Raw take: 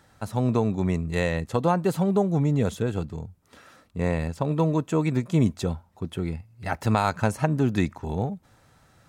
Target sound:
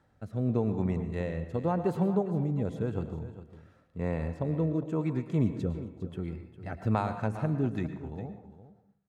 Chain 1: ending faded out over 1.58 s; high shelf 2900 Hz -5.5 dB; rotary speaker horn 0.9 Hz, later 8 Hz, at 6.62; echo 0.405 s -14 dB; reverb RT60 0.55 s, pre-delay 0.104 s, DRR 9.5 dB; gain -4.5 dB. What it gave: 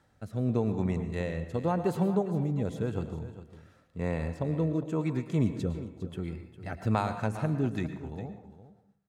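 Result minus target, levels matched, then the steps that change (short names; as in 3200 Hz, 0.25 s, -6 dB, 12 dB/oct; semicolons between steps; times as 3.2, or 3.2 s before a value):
8000 Hz band +7.5 dB
change: high shelf 2900 Hz -14.5 dB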